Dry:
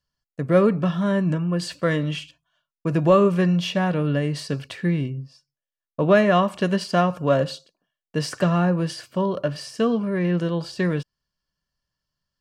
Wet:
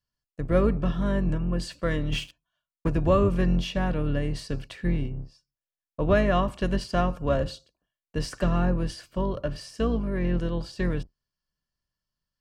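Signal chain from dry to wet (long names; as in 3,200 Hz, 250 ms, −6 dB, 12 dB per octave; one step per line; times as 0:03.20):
sub-octave generator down 2 octaves, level +1 dB
0:02.12–0:02.89: leveller curve on the samples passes 2
level −6 dB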